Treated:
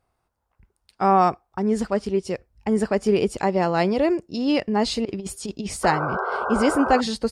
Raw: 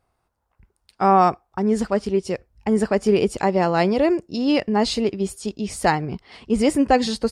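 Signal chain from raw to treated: 5.05–5.77 s: compressor with a negative ratio -26 dBFS, ratio -0.5; 5.83–7.01 s: painted sound noise 360–1600 Hz -24 dBFS; trim -2 dB

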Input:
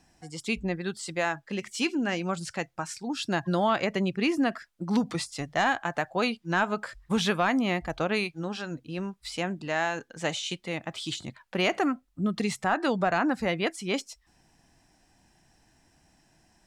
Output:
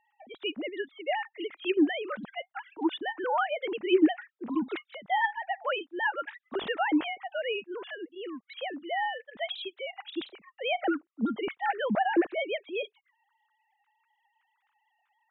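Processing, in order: formants replaced by sine waves; speed mistake 44.1 kHz file played as 48 kHz; trim -2 dB

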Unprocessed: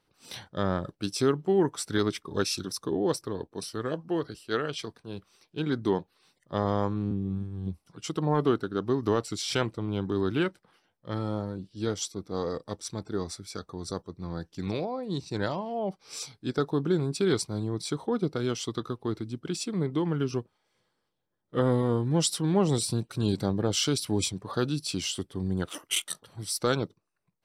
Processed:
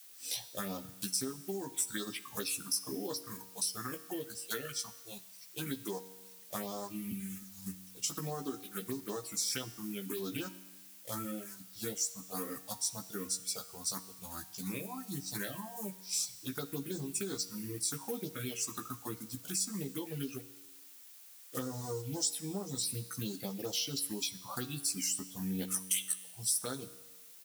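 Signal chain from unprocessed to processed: block-companded coder 5-bit; touch-sensitive phaser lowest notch 160 Hz, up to 2.6 kHz, full sweep at -21 dBFS; peaking EQ 12 kHz +7.5 dB 1.5 oct; doubling 15 ms -4 dB; reverberation RT60 1.0 s, pre-delay 3 ms, DRR 10 dB; reverb removal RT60 1.5 s; compression, threshold -34 dBFS, peak gain reduction 15 dB; treble shelf 5.3 kHz +9.5 dB; feedback comb 94 Hz, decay 1.3 s, harmonics all, mix 60%; added noise blue -60 dBFS; trim +5 dB

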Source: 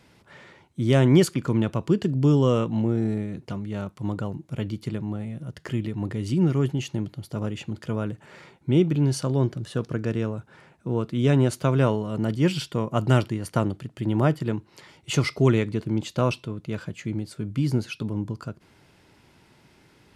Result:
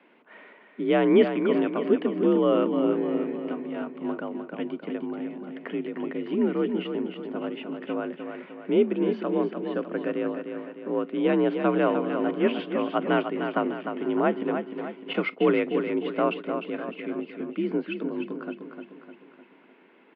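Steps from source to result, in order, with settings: feedback delay 303 ms, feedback 50%, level -7 dB; 15.13–16.44 s: gate -30 dBFS, range -12 dB; mistuned SSB +51 Hz 190–2900 Hz

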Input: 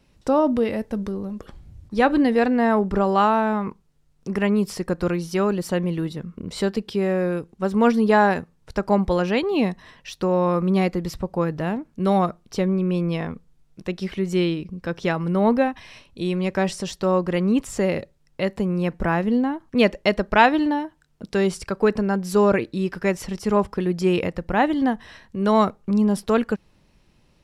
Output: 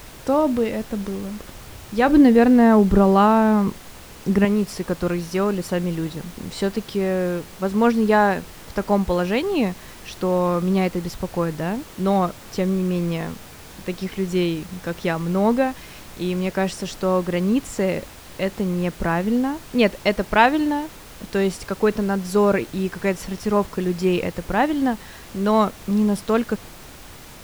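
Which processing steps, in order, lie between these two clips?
2.08–4.45 s: bass shelf 370 Hz +10 dB; added noise pink -41 dBFS

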